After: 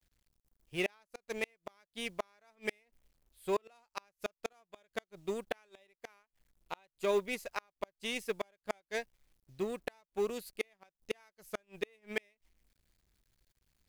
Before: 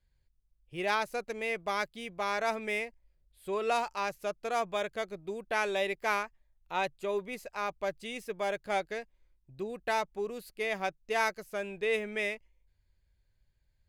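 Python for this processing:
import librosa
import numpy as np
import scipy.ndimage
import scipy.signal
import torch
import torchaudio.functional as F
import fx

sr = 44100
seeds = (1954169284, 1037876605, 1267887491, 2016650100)

y = fx.law_mismatch(x, sr, coded='A')
y = fx.high_shelf(y, sr, hz=2900.0, db=5.5)
y = fx.gate_flip(y, sr, shuts_db=-24.0, range_db=-38)
y = y * librosa.db_to_amplitude(3.5)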